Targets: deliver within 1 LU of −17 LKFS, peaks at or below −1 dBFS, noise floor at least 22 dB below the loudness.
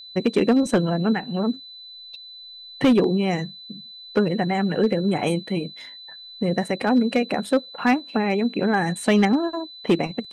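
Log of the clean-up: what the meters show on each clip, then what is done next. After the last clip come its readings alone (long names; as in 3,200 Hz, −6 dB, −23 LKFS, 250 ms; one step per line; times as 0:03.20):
share of clipped samples 0.6%; peaks flattened at −11.5 dBFS; interfering tone 4,000 Hz; level of the tone −39 dBFS; integrated loudness −22.0 LKFS; sample peak −11.5 dBFS; target loudness −17.0 LKFS
→ clipped peaks rebuilt −11.5 dBFS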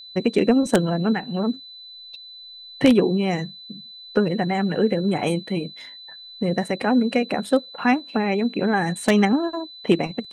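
share of clipped samples 0.0%; interfering tone 4,000 Hz; level of the tone −39 dBFS
→ notch filter 4,000 Hz, Q 30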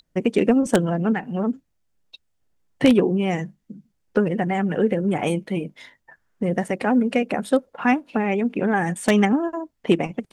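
interfering tone none found; integrated loudness −22.0 LKFS; sample peak −2.5 dBFS; target loudness −17.0 LKFS
→ level +5 dB
brickwall limiter −1 dBFS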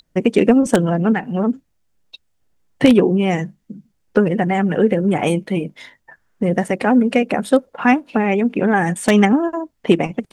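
integrated loudness −17.0 LKFS; sample peak −1.0 dBFS; background noise floor −66 dBFS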